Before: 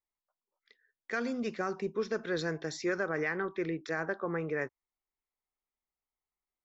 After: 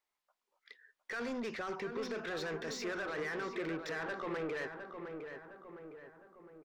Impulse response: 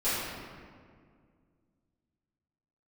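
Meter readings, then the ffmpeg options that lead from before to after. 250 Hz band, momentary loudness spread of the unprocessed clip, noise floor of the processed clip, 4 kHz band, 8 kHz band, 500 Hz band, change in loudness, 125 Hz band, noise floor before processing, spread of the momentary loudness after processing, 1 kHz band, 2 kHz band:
−5.5 dB, 4 LU, below −85 dBFS, −0.5 dB, can't be measured, −5.0 dB, −5.0 dB, −8.0 dB, below −85 dBFS, 17 LU, −3.0 dB, −4.0 dB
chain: -filter_complex "[0:a]alimiter=level_in=6dB:limit=-24dB:level=0:latency=1:release=52,volume=-6dB,asplit=2[link_01][link_02];[link_02]highpass=frequency=720:poles=1,volume=19dB,asoftclip=type=tanh:threshold=-30dB[link_03];[link_01][link_03]amix=inputs=2:normalize=0,lowpass=frequency=3200:poles=1,volume=-6dB,asplit=2[link_04][link_05];[link_05]adelay=710,lowpass=frequency=2000:poles=1,volume=-6.5dB,asplit=2[link_06][link_07];[link_07]adelay=710,lowpass=frequency=2000:poles=1,volume=0.53,asplit=2[link_08][link_09];[link_09]adelay=710,lowpass=frequency=2000:poles=1,volume=0.53,asplit=2[link_10][link_11];[link_11]adelay=710,lowpass=frequency=2000:poles=1,volume=0.53,asplit=2[link_12][link_13];[link_13]adelay=710,lowpass=frequency=2000:poles=1,volume=0.53,asplit=2[link_14][link_15];[link_15]adelay=710,lowpass=frequency=2000:poles=1,volume=0.53,asplit=2[link_16][link_17];[link_17]adelay=710,lowpass=frequency=2000:poles=1,volume=0.53[link_18];[link_06][link_08][link_10][link_12][link_14][link_16][link_18]amix=inputs=7:normalize=0[link_19];[link_04][link_19]amix=inputs=2:normalize=0,volume=-2.5dB"

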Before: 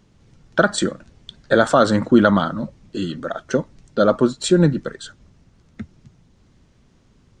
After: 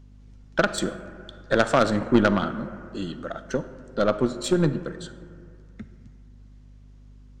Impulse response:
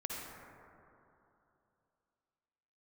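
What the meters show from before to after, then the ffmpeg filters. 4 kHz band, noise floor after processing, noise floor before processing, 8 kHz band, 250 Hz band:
−5.5 dB, −49 dBFS, −57 dBFS, −6.5 dB, −6.0 dB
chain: -filter_complex "[0:a]aeval=exprs='0.841*(cos(1*acos(clip(val(0)/0.841,-1,1)))-cos(1*PI/2))+0.237*(cos(3*acos(clip(val(0)/0.841,-1,1)))-cos(3*PI/2))+0.075*(cos(5*acos(clip(val(0)/0.841,-1,1)))-cos(5*PI/2))+0.0237*(cos(6*acos(clip(val(0)/0.841,-1,1)))-cos(6*PI/2))+0.00668*(cos(7*acos(clip(val(0)/0.841,-1,1)))-cos(7*PI/2))':channel_layout=same,aeval=exprs='val(0)+0.00501*(sin(2*PI*50*n/s)+sin(2*PI*2*50*n/s)/2+sin(2*PI*3*50*n/s)/3+sin(2*PI*4*50*n/s)/4+sin(2*PI*5*50*n/s)/5)':channel_layout=same,asplit=2[link_01][link_02];[1:a]atrim=start_sample=2205,asetrate=57330,aresample=44100[link_03];[link_02][link_03]afir=irnorm=-1:irlink=0,volume=-8.5dB[link_04];[link_01][link_04]amix=inputs=2:normalize=0,volume=-3dB"

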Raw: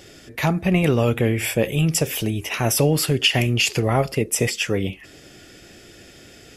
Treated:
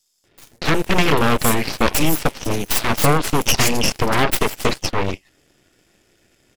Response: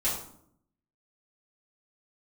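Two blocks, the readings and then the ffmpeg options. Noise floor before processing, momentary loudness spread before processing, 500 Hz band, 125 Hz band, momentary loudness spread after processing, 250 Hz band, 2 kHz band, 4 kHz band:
−46 dBFS, 7 LU, +0.5 dB, −3.0 dB, 7 LU, +0.5 dB, +3.5 dB, +1.0 dB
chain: -filter_complex "[0:a]asplit=2[link_01][link_02];[link_02]acrusher=bits=5:dc=4:mix=0:aa=0.000001,volume=-8.5dB[link_03];[link_01][link_03]amix=inputs=2:normalize=0,acrossover=split=4500[link_04][link_05];[link_04]adelay=240[link_06];[link_06][link_05]amix=inputs=2:normalize=0,aresample=32000,aresample=44100,aeval=exprs='0.75*(cos(1*acos(clip(val(0)/0.75,-1,1)))-cos(1*PI/2))+0.168*(cos(3*acos(clip(val(0)/0.75,-1,1)))-cos(3*PI/2))+0.015*(cos(7*acos(clip(val(0)/0.75,-1,1)))-cos(7*PI/2))+0.188*(cos(8*acos(clip(val(0)/0.75,-1,1)))-cos(8*PI/2))':channel_layout=same"

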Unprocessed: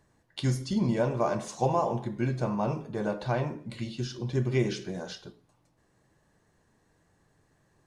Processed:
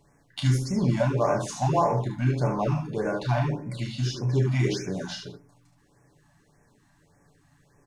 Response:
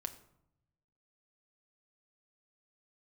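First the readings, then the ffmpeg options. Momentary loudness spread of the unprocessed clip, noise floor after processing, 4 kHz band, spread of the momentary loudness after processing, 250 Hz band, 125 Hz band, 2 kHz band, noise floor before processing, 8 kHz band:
11 LU, −63 dBFS, +4.5 dB, 10 LU, +2.0 dB, +6.5 dB, +4.0 dB, −69 dBFS, +5.5 dB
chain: -filter_complex "[0:a]aecho=1:1:7:0.39,asplit=2[link_01][link_02];[link_02]volume=30.5dB,asoftclip=hard,volume=-30.5dB,volume=-6dB[link_03];[link_01][link_03]amix=inputs=2:normalize=0,aecho=1:1:32|73:0.531|0.501,afftfilt=real='re*(1-between(b*sr/1024,390*pow(3800/390,0.5+0.5*sin(2*PI*1.7*pts/sr))/1.41,390*pow(3800/390,0.5+0.5*sin(2*PI*1.7*pts/sr))*1.41))':imag='im*(1-between(b*sr/1024,390*pow(3800/390,0.5+0.5*sin(2*PI*1.7*pts/sr))/1.41,390*pow(3800/390,0.5+0.5*sin(2*PI*1.7*pts/sr))*1.41))':win_size=1024:overlap=0.75"

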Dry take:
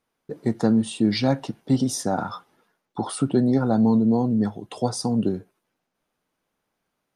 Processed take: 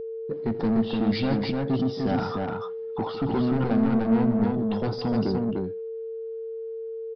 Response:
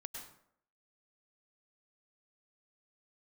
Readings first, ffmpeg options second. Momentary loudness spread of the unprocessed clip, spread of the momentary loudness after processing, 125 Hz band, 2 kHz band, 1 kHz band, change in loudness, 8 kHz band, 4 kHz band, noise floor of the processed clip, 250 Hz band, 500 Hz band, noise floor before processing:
13 LU, 13 LU, −2.0 dB, +0.5 dB, −2.0 dB, −3.5 dB, below −25 dB, −4.0 dB, −34 dBFS, −2.5 dB, +0.5 dB, −79 dBFS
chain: -af "lowpass=frequency=3400:poles=1,lowshelf=frequency=77:gain=-7.5,aresample=11025,asoftclip=type=tanh:threshold=-24.5dB,aresample=44100,aecho=1:1:83|156|299:0.119|0.188|0.708,aeval=exprs='val(0)+0.0224*sin(2*PI*450*n/s)':channel_layout=same,lowshelf=frequency=260:gain=6.5"

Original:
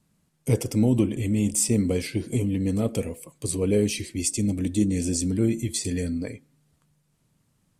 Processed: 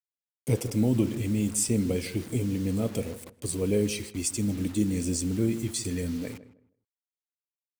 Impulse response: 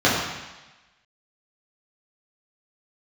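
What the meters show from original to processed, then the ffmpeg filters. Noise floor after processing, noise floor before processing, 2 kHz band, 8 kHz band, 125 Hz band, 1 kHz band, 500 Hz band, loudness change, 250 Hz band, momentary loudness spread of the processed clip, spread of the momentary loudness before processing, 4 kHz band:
below −85 dBFS, −69 dBFS, −3.0 dB, −3.5 dB, −3.5 dB, −2.5 dB, −3.5 dB, −3.0 dB, −3.5 dB, 9 LU, 8 LU, −3.0 dB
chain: -filter_complex "[0:a]acrusher=bits=6:mix=0:aa=0.000001,asplit=2[link_01][link_02];[link_02]adelay=158,lowpass=frequency=1400:poles=1,volume=-14.5dB,asplit=2[link_03][link_04];[link_04]adelay=158,lowpass=frequency=1400:poles=1,volume=0.25,asplit=2[link_05][link_06];[link_06]adelay=158,lowpass=frequency=1400:poles=1,volume=0.25[link_07];[link_01][link_03][link_05][link_07]amix=inputs=4:normalize=0,volume=-3.5dB"

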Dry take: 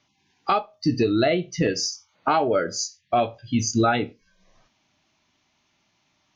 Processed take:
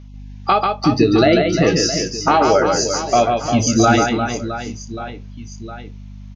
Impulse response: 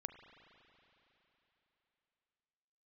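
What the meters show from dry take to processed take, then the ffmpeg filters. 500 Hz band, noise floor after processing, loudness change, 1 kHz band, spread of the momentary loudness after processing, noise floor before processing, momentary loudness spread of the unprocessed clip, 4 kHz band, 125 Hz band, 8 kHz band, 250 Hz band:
+8.0 dB, −35 dBFS, +8.0 dB, +8.0 dB, 20 LU, −69 dBFS, 8 LU, +8.0 dB, +8.5 dB, can't be measured, +8.5 dB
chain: -af "aeval=exprs='val(0)+0.00708*(sin(2*PI*50*n/s)+sin(2*PI*2*50*n/s)/2+sin(2*PI*3*50*n/s)/3+sin(2*PI*4*50*n/s)/4+sin(2*PI*5*50*n/s)/5)':channel_layout=same,aecho=1:1:140|350|665|1138|1846:0.631|0.398|0.251|0.158|0.1,volume=6dB"

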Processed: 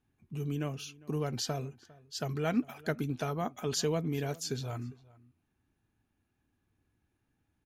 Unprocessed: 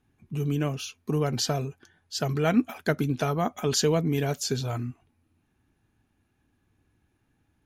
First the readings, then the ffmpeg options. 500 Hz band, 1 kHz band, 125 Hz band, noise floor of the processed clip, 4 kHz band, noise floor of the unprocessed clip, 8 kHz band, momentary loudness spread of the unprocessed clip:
−7.5 dB, −7.5 dB, −7.5 dB, −80 dBFS, −7.5 dB, −72 dBFS, −7.5 dB, 11 LU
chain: -filter_complex "[0:a]asplit=2[link_01][link_02];[link_02]adelay=402.3,volume=-22dB,highshelf=frequency=4000:gain=-9.05[link_03];[link_01][link_03]amix=inputs=2:normalize=0,volume=-7.5dB"

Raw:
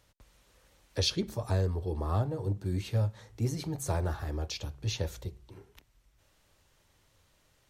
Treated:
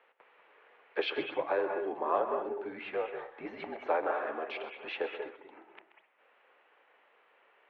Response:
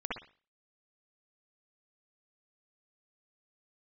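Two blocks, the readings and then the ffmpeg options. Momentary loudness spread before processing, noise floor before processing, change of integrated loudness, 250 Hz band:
7 LU, −68 dBFS, −2.0 dB, −6.0 dB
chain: -filter_complex "[0:a]asplit=2[link_01][link_02];[1:a]atrim=start_sample=2205,adelay=130[link_03];[link_02][link_03]afir=irnorm=-1:irlink=0,volume=-9.5dB[link_04];[link_01][link_04]amix=inputs=2:normalize=0,highpass=frequency=530:width_type=q:width=0.5412,highpass=frequency=530:width_type=q:width=1.307,lowpass=frequency=2700:width_type=q:width=0.5176,lowpass=frequency=2700:width_type=q:width=0.7071,lowpass=frequency=2700:width_type=q:width=1.932,afreqshift=-70,volume=7.5dB"

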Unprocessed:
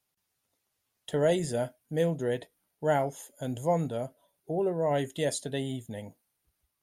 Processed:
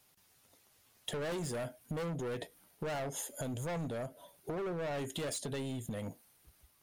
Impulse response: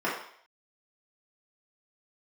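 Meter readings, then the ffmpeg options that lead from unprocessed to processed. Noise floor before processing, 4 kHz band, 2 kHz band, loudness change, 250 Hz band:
−81 dBFS, −3.5 dB, −4.5 dB, −8.5 dB, −7.5 dB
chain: -filter_complex "[0:a]asplit=2[link_01][link_02];[link_02]aeval=exprs='0.2*sin(PI/2*3.55*val(0)/0.2)':channel_layout=same,volume=-5dB[link_03];[link_01][link_03]amix=inputs=2:normalize=0,alimiter=limit=-22.5dB:level=0:latency=1:release=120,volume=27dB,asoftclip=hard,volume=-27dB,acompressor=threshold=-37dB:ratio=6"

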